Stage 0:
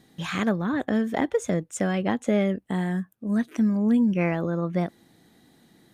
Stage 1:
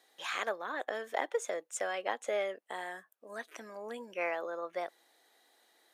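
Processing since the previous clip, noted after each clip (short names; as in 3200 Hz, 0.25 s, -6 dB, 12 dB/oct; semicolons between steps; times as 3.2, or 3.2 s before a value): HPF 500 Hz 24 dB/oct; gain -4.5 dB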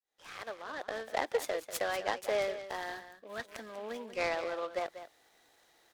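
opening faded in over 1.34 s; echo 0.192 s -12 dB; noise-modulated delay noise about 2100 Hz, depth 0.033 ms; gain +1.5 dB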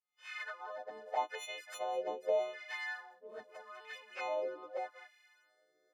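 frequency quantiser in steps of 3 st; envelope flanger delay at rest 7.2 ms, full sweep at -28 dBFS; LFO band-pass sine 0.82 Hz 420–2200 Hz; gain +3.5 dB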